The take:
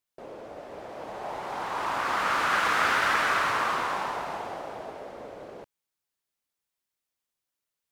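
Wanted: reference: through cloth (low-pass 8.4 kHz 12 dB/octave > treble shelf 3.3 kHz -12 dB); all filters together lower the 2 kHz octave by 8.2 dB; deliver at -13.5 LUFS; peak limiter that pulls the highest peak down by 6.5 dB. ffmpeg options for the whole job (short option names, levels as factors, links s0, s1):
-af "equalizer=f=2000:t=o:g=-8,alimiter=limit=0.0794:level=0:latency=1,lowpass=8400,highshelf=f=3300:g=-12,volume=11.9"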